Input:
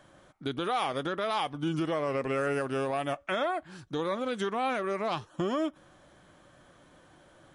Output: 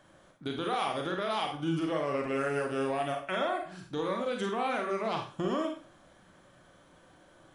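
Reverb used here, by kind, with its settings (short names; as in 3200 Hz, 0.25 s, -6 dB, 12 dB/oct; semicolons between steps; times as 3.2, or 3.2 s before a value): Schroeder reverb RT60 0.38 s, combs from 33 ms, DRR 2 dB; gain -3 dB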